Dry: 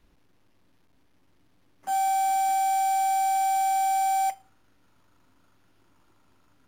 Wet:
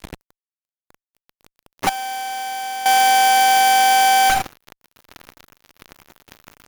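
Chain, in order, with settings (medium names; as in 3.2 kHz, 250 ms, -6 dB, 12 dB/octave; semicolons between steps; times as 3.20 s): Chebyshev shaper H 4 -9 dB, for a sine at -20.5 dBFS; fuzz box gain 54 dB, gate -58 dBFS; 1.89–2.86 s: gate -7 dBFS, range -13 dB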